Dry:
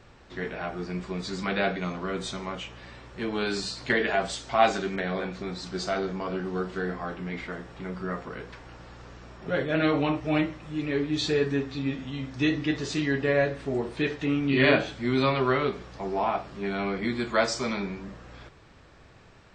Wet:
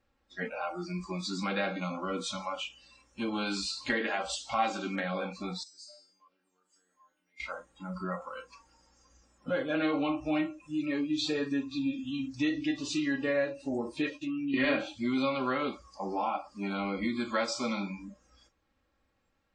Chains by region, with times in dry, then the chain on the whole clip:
0:05.63–0:07.40: RIAA equalisation recording + downward compressor 3 to 1, threshold −31 dBFS + tuned comb filter 300 Hz, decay 0.83 s, mix 90%
0:14.10–0:14.54: downward expander −36 dBFS + downward compressor 12 to 1, threshold −31 dBFS + double-tracking delay 15 ms −3.5 dB
whole clip: comb filter 3.7 ms, depth 64%; noise reduction from a noise print of the clip's start 23 dB; downward compressor 2 to 1, threshold −32 dBFS

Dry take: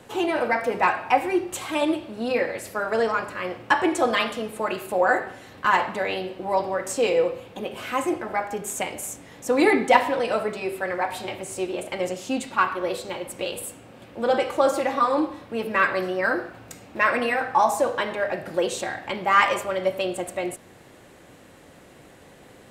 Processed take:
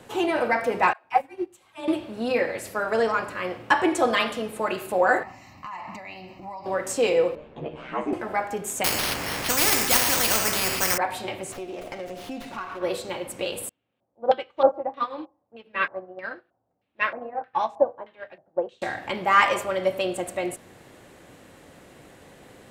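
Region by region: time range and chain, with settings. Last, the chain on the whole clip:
0:00.93–0:01.88: all-pass dispersion lows, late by 124 ms, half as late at 340 Hz + expander for the loud parts 2.5 to 1, over −32 dBFS
0:05.23–0:06.66: downward compressor 12 to 1, threshold −30 dBFS + phaser with its sweep stopped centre 2,300 Hz, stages 8
0:07.35–0:08.13: head-to-tape spacing loss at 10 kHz 31 dB + ring modulation 64 Hz + double-tracking delay 13 ms −2 dB
0:08.84–0:10.98: variable-slope delta modulation 64 kbit/s + bad sample-rate conversion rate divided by 6×, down filtered, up hold + every bin compressed towards the loudest bin 4 to 1
0:11.51–0:12.81: downward compressor 4 to 1, threshold −32 dBFS + steady tone 710 Hz −45 dBFS + windowed peak hold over 5 samples
0:13.69–0:18.82: high-shelf EQ 12,000 Hz +10.5 dB + auto-filter low-pass square 1.6 Hz 780–3,300 Hz + expander for the loud parts 2.5 to 1, over −34 dBFS
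whole clip: no processing

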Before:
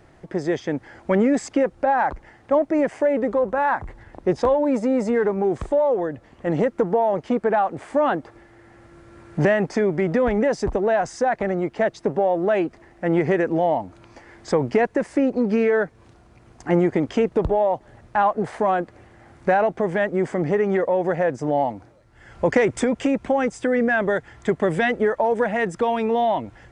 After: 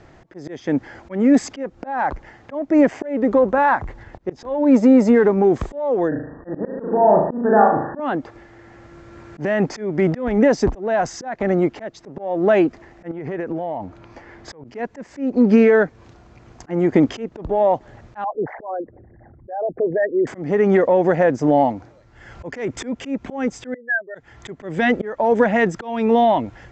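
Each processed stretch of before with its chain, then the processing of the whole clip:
0:06.08–0:08.00: linear-phase brick-wall low-pass 1,900 Hz + flutter between parallel walls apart 6.5 metres, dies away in 0.7 s
0:13.11–0:14.64: high-shelf EQ 4,300 Hz −10.5 dB + downward compressor 16 to 1, threshold −26 dBFS
0:18.24–0:20.27: spectral envelope exaggerated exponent 3 + Chebyshev low-pass with heavy ripple 7,200 Hz, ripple 3 dB
0:23.74–0:24.15: expanding power law on the bin magnitudes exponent 3 + high-pass filter 1,400 Hz
whole clip: dynamic equaliser 260 Hz, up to +6 dB, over −34 dBFS, Q 2.1; Butterworth low-pass 7,500 Hz 72 dB per octave; volume swells 320 ms; level +4.5 dB

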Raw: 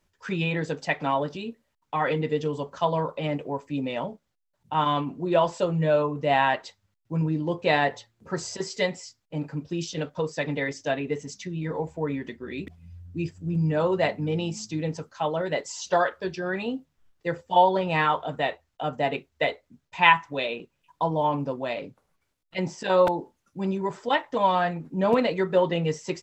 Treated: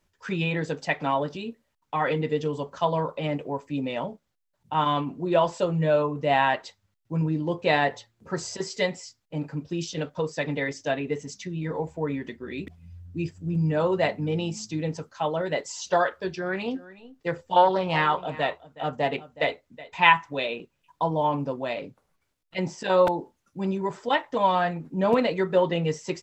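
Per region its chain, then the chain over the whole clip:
0:16.30–0:20.03: single-tap delay 370 ms −18 dB + highs frequency-modulated by the lows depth 0.16 ms
whole clip: no processing

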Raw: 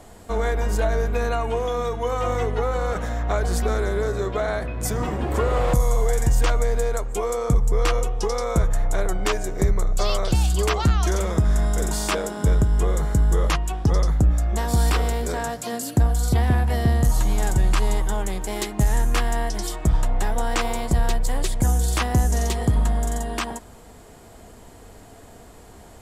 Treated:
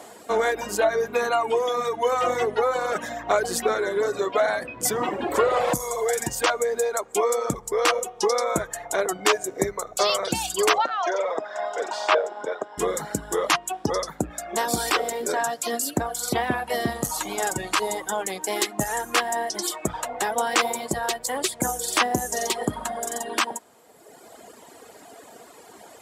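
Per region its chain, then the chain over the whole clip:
0:10.78–0:12.78: high-pass with resonance 620 Hz, resonance Q 1.7 + high-frequency loss of the air 180 metres
whole clip: reverb reduction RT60 1.5 s; high-pass filter 330 Hz 12 dB per octave; level +5.5 dB

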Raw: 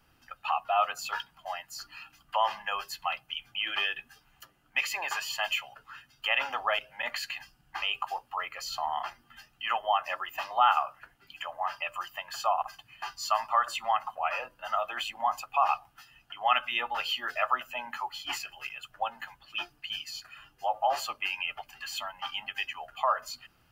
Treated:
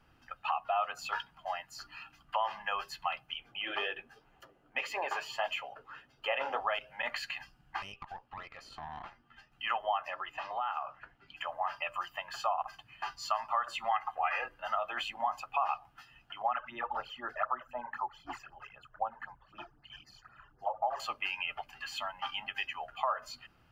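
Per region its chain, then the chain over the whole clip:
0:03.36–0:06.60: parametric band 460 Hz +13.5 dB 1.5 octaves + flanger 1.8 Hz, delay 0.9 ms, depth 8.1 ms, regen −57%
0:07.82–0:09.52: downward compressor 2 to 1, threshold −41 dBFS + high-shelf EQ 7,700 Hz −11.5 dB + tube saturation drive 36 dB, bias 0.75
0:10.09–0:11.37: high-frequency loss of the air 69 metres + downward compressor 2.5 to 1, threshold −35 dBFS
0:13.91–0:14.59: parametric band 1,900 Hz +9.5 dB 0.64 octaves + comb filter 2.5 ms, depth 53%
0:16.42–0:21.00: high shelf with overshoot 2,000 Hz −9.5 dB, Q 1.5 + all-pass phaser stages 12, 3.9 Hz, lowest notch 220–3,000 Hz
whole clip: low-pass filter 2,500 Hz 6 dB per octave; downward compressor 2.5 to 1, threshold −31 dBFS; level +1 dB

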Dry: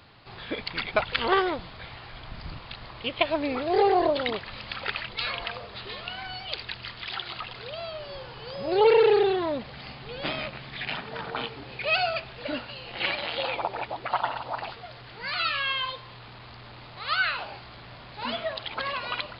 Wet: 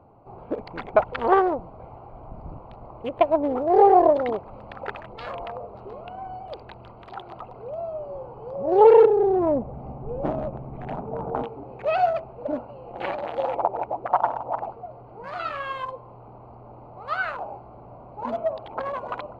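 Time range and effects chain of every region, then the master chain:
0:09.05–0:11.43: spectral tilt −2.5 dB per octave + downward compressor 8 to 1, threshold −21 dBFS
whole clip: adaptive Wiener filter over 25 samples; drawn EQ curve 140 Hz 0 dB, 790 Hz +9 dB, 3,700 Hz −15 dB

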